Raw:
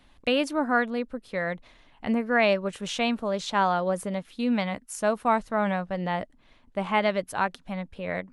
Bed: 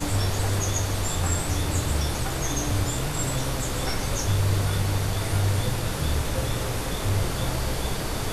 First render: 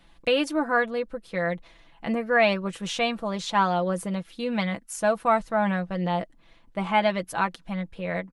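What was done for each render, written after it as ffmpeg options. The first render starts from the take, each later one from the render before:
-af "aecho=1:1:6:0.61"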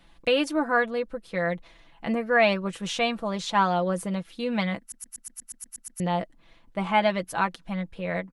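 -filter_complex "[0:a]asplit=11[a][b][c][d][e][f][g][h][i][j][k];[a]atrim=end=4.922[l];[b]atrim=start=4.798:end=4.922[m];[c]atrim=start=4.798:end=4.922[n];[d]atrim=start=4.798:end=4.922[o];[e]atrim=start=4.798:end=4.922[p];[f]atrim=start=4.798:end=4.922[q];[g]atrim=start=4.798:end=4.922[r];[h]atrim=start=4.798:end=4.922[s];[i]atrim=start=4.798:end=4.922[t];[j]atrim=start=4.798:end=4.922[u];[k]atrim=start=5.998[v];[l][m]acrossfade=d=0.004:c1=hsin:c2=hsin[w];[w][n]acrossfade=d=0.004:c1=hsin:c2=hsin[x];[x][o]acrossfade=d=0.004:c1=hsin:c2=hsin[y];[y][p]acrossfade=d=0.004:c1=hsin:c2=hsin[z];[z][q]acrossfade=d=0.004:c1=hsin:c2=hsin[aa];[aa][r]acrossfade=d=0.004:c1=hsin:c2=hsin[ab];[ab][s]acrossfade=d=0.004:c1=hsin:c2=hsin[ac];[ac][t]acrossfade=d=0.004:c1=hsin:c2=hsin[ad];[ad][u]acrossfade=d=0.004:c1=hsin:c2=hsin[ae];[ae][v]acrossfade=d=0.004:c1=hsin:c2=hsin"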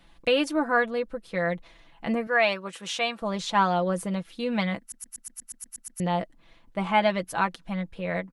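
-filter_complex "[0:a]asettb=1/sr,asplit=3[a][b][c];[a]atrim=end=2.274[d];[b]atrim=start=2.27:end=3.22,asetpts=PTS-STARTPTS,afade=t=in:d=0.004:c=qsin,afade=t=out:st=0.946:d=0.004:c=qsin,highpass=f=620:p=1[e];[c]atrim=start=3.216[f];[d][e]acrossfade=d=0.004:c1=hsin:c2=qsin[g];[g][f]acrossfade=d=0.004:c1=qsin:c2=hsin"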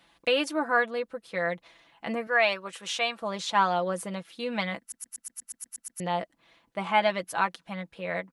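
-af "highpass=63,lowshelf=f=270:g=-11"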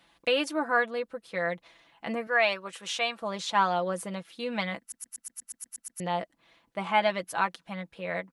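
-af "volume=-1dB"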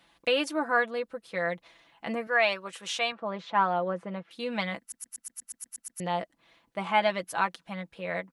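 -filter_complex "[0:a]asettb=1/sr,asplit=3[a][b][c];[a]atrim=end=3.124[d];[b]atrim=start=3.12:end=4.31,asetpts=PTS-STARTPTS,afade=t=in:d=0.004:c=qsin,afade=t=out:st=1.186:d=0.004:c=qsin,highpass=100,lowpass=2k[e];[c]atrim=start=4.306[f];[d][e]acrossfade=d=0.004:c1=hsin:c2=qsin[g];[g][f]acrossfade=d=0.004:c1=qsin:c2=hsin"

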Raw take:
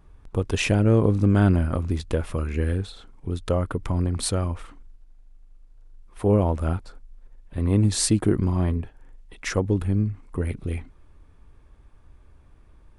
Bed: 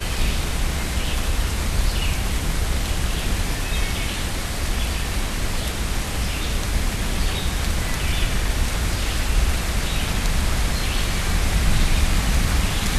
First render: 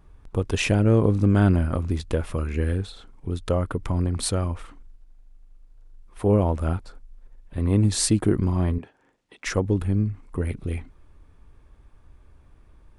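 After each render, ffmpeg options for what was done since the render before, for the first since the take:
-filter_complex "[0:a]asettb=1/sr,asplit=3[a][b][c];[a]atrim=end=8.784[d];[b]atrim=start=8.78:end=9.46,asetpts=PTS-STARTPTS,afade=t=in:d=0.004:c=qsin,afade=t=out:st=0.676:d=0.004:c=qsin,highpass=220,lowpass=7.8k[e];[c]atrim=start=9.456[f];[d][e]acrossfade=d=0.004:c1=hsin:c2=qsin[g];[g][f]acrossfade=d=0.004:c1=qsin:c2=hsin"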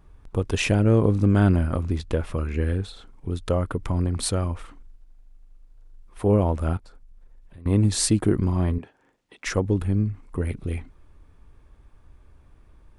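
-filter_complex "[0:a]asettb=1/sr,asplit=3[a][b][c];[a]atrim=end=1.894[d];[b]atrim=start=1.89:end=2.83,asetpts=PTS-STARTPTS,afade=t=in:d=0.004:c=qsin,afade=t=out:st=0.936:d=0.004:c=qsin,highshelf=f=8.3k:g=-7.5[e];[c]atrim=start=2.826[f];[d][e]acrossfade=d=0.004:c1=hsin:c2=qsin[g];[g][f]acrossfade=d=0.004:c1=qsin:c2=hsin,asettb=1/sr,asplit=3[h][i][j];[h]atrim=end=6.774[k];[i]atrim=start=6.77:end=7.66,asetpts=PTS-STARTPTS,afade=t=in:d=0.004:c=qsin,afade=t=out:st=0.886:d=0.004:c=qsin,acompressor=threshold=-44dB:ratio=4:attack=3.2:release=140:knee=1:detection=peak[l];[j]atrim=start=7.656[m];[k][l]acrossfade=d=0.004:c1=hsin:c2=qsin[n];[n][m]acrossfade=d=0.004:c1=qsin:c2=hsin"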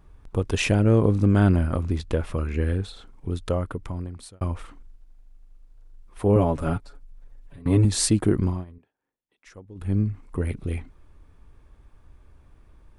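-filter_complex "[0:a]asettb=1/sr,asplit=3[a][b][c];[a]atrim=end=6.354[d];[b]atrim=start=6.35:end=7.85,asetpts=PTS-STARTPTS,afade=t=in:d=0.004:c=qsin,afade=t=out:st=1.496:d=0.004:c=qsin,aecho=1:1:7.1:0.82,atrim=end_sample=66150[e];[c]atrim=start=7.846[f];[d][e]acrossfade=d=0.004:c1=hsin:c2=qsin[g];[g][f]acrossfade=d=0.004:c1=qsin:c2=hsin,asplit=4[h][i][j][k];[h]atrim=end=4.41,asetpts=PTS-STARTPTS,afade=t=out:st=3.33:d=1.08[l];[i]atrim=start=4.41:end=8.65,asetpts=PTS-STARTPTS,afade=t=in:d=0.004:c=hsin,afade=t=out:st=4.05:d=0.19:silence=0.0841395[m];[j]atrim=start=8.65:end=9.75,asetpts=PTS-STARTPTS,volume=-21.5dB[n];[k]atrim=start=9.75,asetpts=PTS-STARTPTS,afade=t=in:d=0.19:silence=0.0841395[o];[l][m][n][o]concat=n=4:v=0:a=1"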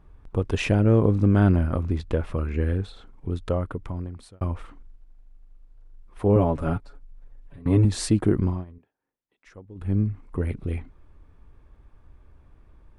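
-af "highshelf=f=4.1k:g=-10.5"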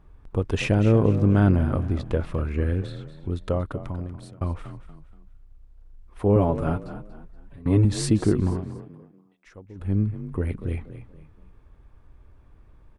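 -filter_complex "[0:a]asplit=4[a][b][c][d];[b]adelay=237,afreqshift=34,volume=-13dB[e];[c]adelay=474,afreqshift=68,volume=-22.9dB[f];[d]adelay=711,afreqshift=102,volume=-32.8dB[g];[a][e][f][g]amix=inputs=4:normalize=0"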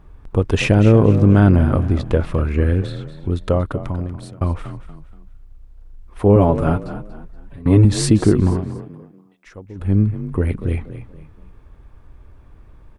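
-af "volume=7.5dB,alimiter=limit=-2dB:level=0:latency=1"

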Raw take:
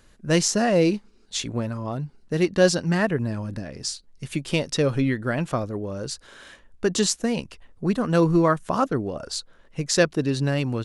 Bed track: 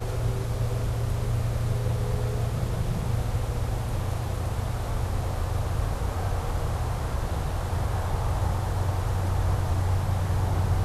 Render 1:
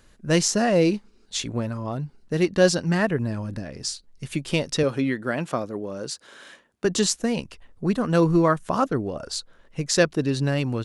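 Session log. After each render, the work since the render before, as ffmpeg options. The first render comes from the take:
-filter_complex "[0:a]asettb=1/sr,asplit=3[a][b][c];[a]atrim=end=4.834[d];[b]atrim=start=4.83:end=6.85,asetpts=PTS-STARTPTS,afade=t=in:d=0.004:c=qsin,afade=t=out:st=2.016:d=0.004:c=qsin,highpass=180[e];[c]atrim=start=6.846[f];[d][e]acrossfade=d=0.004:c1=hsin:c2=qsin[g];[g][f]acrossfade=d=0.004:c1=qsin:c2=hsin"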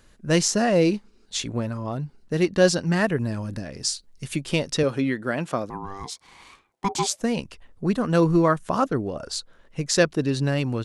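-filter_complex "[0:a]asettb=1/sr,asplit=3[a][b][c];[a]atrim=end=2.974[d];[b]atrim=start=2.97:end=4.36,asetpts=PTS-STARTPTS,afade=t=in:d=0.004:c=qsin,afade=t=out:st=1.386:d=0.004:c=qsin,highshelf=f=4.1k:g=5.5[e];[c]atrim=start=4.356[f];[d][e]acrossfade=d=0.004:c1=hsin:c2=qsin[g];[g][f]acrossfade=d=0.004:c1=qsin:c2=hsin,asettb=1/sr,asplit=3[h][i][j];[h]atrim=end=5.704[k];[i]atrim=start=5.7:end=7.21,asetpts=PTS-STARTPTS,afade=t=in:d=0.004:c=qsin,afade=t=out:st=1.506:d=0.004:c=qsin,aeval=exprs='val(0)*sin(2*PI*590*n/s)':c=same[l];[j]atrim=start=7.206[m];[k][l]acrossfade=d=0.004:c1=hsin:c2=qsin[n];[n][m]acrossfade=d=0.004:c1=qsin:c2=hsin"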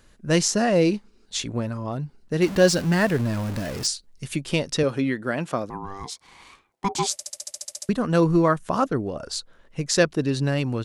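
-filter_complex "[0:a]asettb=1/sr,asplit=3[a][b][c];[a]atrim=end=2.424[d];[b]atrim=start=2.42:end=3.87,asetpts=PTS-STARTPTS,afade=t=in:d=0.004:c=qsin,afade=t=out:st=1.446:d=0.004:c=qsin,aeval=exprs='val(0)+0.5*0.0355*sgn(val(0))':c=same[e];[c]atrim=start=3.866[f];[d][e]acrossfade=d=0.004:c1=hsin:c2=qsin[g];[g][f]acrossfade=d=0.004:c1=qsin:c2=hsin,asplit=12[h][i][j][k][l][m][n][o][p][q][r][s];[h]atrim=end=7.192[t];[i]atrim=start=7.118:end=7.192[u];[j]atrim=start=7.118:end=7.192[v];[k]atrim=start=7.118:end=7.192[w];[l]atrim=start=7.118:end=7.192[x];[m]atrim=start=7.118:end=7.192[y];[n]atrim=start=7.118:end=7.192[z];[o]atrim=start=7.118:end=7.192[aa];[p]atrim=start=7.118:end=7.192[ab];[q]atrim=start=7.118:end=7.192[ac];[r]atrim=start=7.118:end=7.192[ad];[s]atrim=start=7.888[ae];[t][u]acrossfade=d=0.004:c1=hsin:c2=hsin[af];[af][v]acrossfade=d=0.004:c1=hsin:c2=hsin[ag];[ag][w]acrossfade=d=0.004:c1=hsin:c2=hsin[ah];[ah][x]acrossfade=d=0.004:c1=hsin:c2=hsin[ai];[ai][y]acrossfade=d=0.004:c1=hsin:c2=hsin[aj];[aj][z]acrossfade=d=0.004:c1=hsin:c2=hsin[ak];[ak][aa]acrossfade=d=0.004:c1=hsin:c2=hsin[al];[al][ab]acrossfade=d=0.004:c1=hsin:c2=hsin[am];[am][ac]acrossfade=d=0.004:c1=hsin:c2=hsin[an];[an][ad]acrossfade=d=0.004:c1=hsin:c2=hsin[ao];[ao][ae]acrossfade=d=0.004:c1=hsin:c2=hsin"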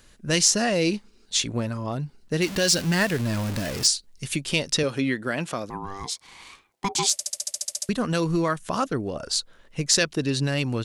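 -filter_complex "[0:a]acrossover=split=2100[a][b];[a]alimiter=limit=-16dB:level=0:latency=1:release=191[c];[b]acontrast=36[d];[c][d]amix=inputs=2:normalize=0"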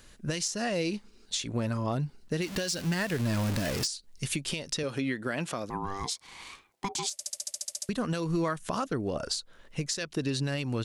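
-af "acompressor=threshold=-24dB:ratio=6,alimiter=limit=-19.5dB:level=0:latency=1:release=271"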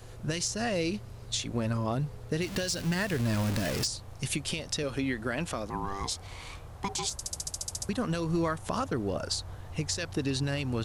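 -filter_complex "[1:a]volume=-18dB[a];[0:a][a]amix=inputs=2:normalize=0"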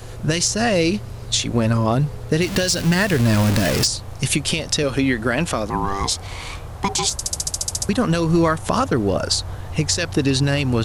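-af "volume=12dB"

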